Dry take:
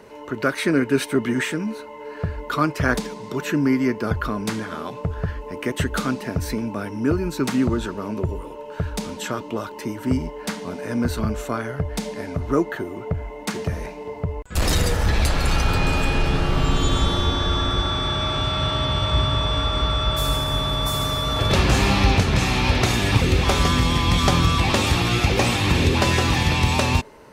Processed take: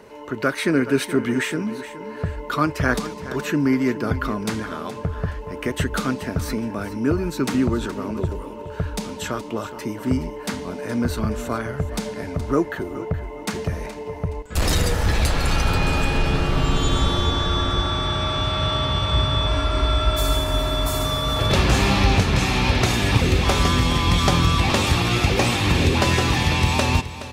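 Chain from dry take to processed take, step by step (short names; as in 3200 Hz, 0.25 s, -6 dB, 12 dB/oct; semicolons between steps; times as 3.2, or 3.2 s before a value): 19.47–21.05 comb 3 ms, depth 64%; on a send: feedback echo 0.421 s, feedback 26%, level -14 dB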